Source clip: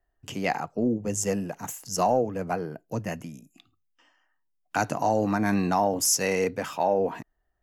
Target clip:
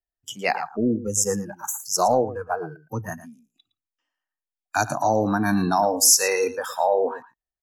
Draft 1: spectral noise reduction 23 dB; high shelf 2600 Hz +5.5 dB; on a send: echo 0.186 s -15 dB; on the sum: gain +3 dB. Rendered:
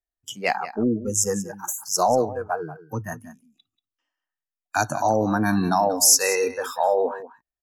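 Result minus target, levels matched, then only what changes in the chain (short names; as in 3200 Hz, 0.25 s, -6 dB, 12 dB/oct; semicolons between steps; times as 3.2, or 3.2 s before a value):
echo 73 ms late
change: echo 0.113 s -15 dB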